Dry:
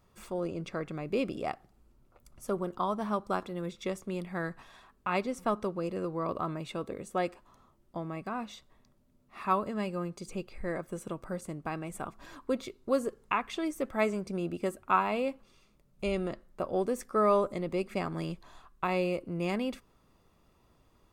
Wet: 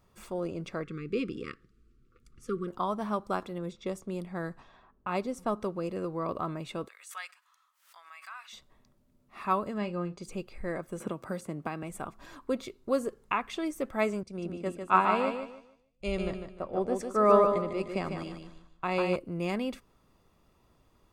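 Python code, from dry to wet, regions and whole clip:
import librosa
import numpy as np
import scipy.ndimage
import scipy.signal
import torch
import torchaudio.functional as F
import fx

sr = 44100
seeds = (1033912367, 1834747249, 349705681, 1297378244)

y = fx.chain(x, sr, fx.brickwall_bandstop(low_hz=520.0, high_hz=1100.0),
    fx.air_absorb(metres=58.0), at=(0.84, 2.68))
y = fx.chain(y, sr, fx.env_lowpass(base_hz=1600.0, full_db=-31.0),
    fx.peak_eq(hz=2200.0, db=-5.5, octaves=1.6), at=(3.58, 5.61))
y = fx.chain(y, sr, fx.highpass(hz=1300.0, slope=24),
    fx.pre_swell(db_per_s=110.0), at=(6.88, 8.53))
y = fx.chain(y, sr, fx.lowpass(hz=5100.0, slope=12),
    fx.doubler(ms=34.0, db=-12), at=(9.78, 10.23))
y = fx.chain(y, sr, fx.highpass(hz=87.0, slope=12),
    fx.peak_eq(hz=7600.0, db=-2.5, octaves=1.9),
    fx.band_squash(depth_pct=100), at=(11.0, 11.83))
y = fx.chain(y, sr, fx.lowpass(hz=9000.0, slope=12),
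    fx.echo_feedback(ms=150, feedback_pct=41, wet_db=-4.5),
    fx.band_widen(depth_pct=70), at=(14.23, 19.16))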